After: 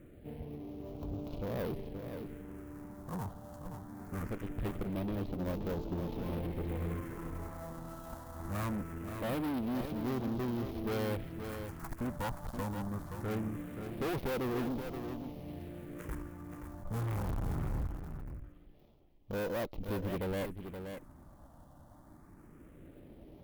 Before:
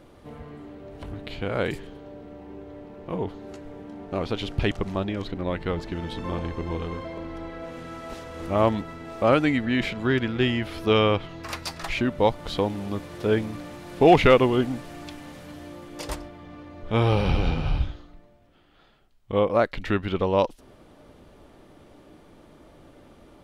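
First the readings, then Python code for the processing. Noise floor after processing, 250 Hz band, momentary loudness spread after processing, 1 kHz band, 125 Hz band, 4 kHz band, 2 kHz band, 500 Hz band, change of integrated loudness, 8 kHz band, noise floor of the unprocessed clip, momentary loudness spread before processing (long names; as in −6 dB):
−57 dBFS, −10.0 dB, 14 LU, −15.5 dB, −9.0 dB, −18.5 dB, −15.5 dB, −15.0 dB, −14.0 dB, −8.0 dB, −53 dBFS, 21 LU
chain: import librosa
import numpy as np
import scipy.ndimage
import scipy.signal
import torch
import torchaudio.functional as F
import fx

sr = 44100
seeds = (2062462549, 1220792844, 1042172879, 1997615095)

p1 = fx.dead_time(x, sr, dead_ms=0.28)
p2 = fx.peak_eq(p1, sr, hz=4100.0, db=-11.5, octaves=2.6)
p3 = fx.phaser_stages(p2, sr, stages=4, low_hz=390.0, high_hz=1800.0, hz=0.22, feedback_pct=5)
p4 = fx.tube_stage(p3, sr, drive_db=34.0, bias=0.5)
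p5 = p4 + fx.echo_single(p4, sr, ms=525, db=-8.0, dry=0)
y = p5 * 10.0 ** (1.0 / 20.0)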